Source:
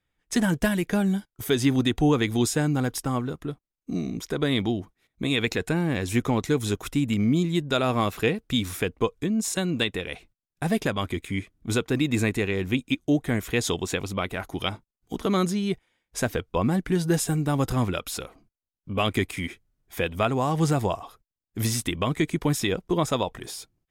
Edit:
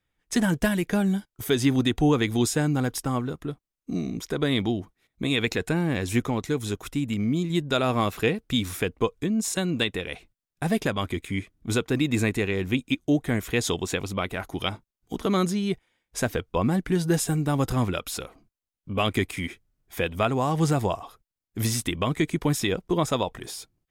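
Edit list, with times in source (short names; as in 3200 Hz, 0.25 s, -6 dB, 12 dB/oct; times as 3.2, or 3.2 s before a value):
6.26–7.5 gain -3 dB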